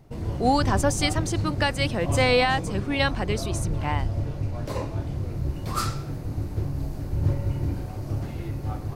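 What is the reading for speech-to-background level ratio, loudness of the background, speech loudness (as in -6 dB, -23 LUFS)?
4.0 dB, -29.5 LUFS, -25.5 LUFS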